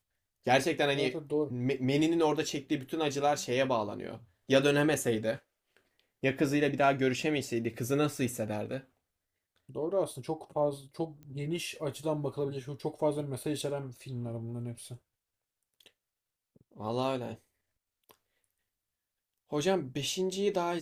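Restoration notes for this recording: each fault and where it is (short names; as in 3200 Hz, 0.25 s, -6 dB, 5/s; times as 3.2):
11.23 pop -37 dBFS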